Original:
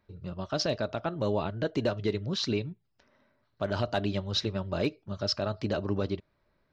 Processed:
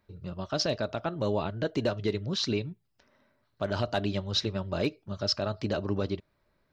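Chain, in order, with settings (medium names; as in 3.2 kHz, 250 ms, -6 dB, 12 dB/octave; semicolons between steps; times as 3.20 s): treble shelf 5.5 kHz +4 dB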